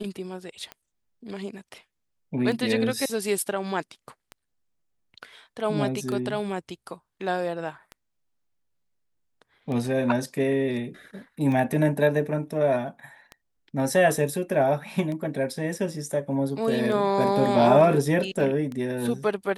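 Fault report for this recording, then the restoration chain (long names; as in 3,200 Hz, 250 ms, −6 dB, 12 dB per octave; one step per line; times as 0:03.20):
scratch tick 33 1/3 rpm −22 dBFS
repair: click removal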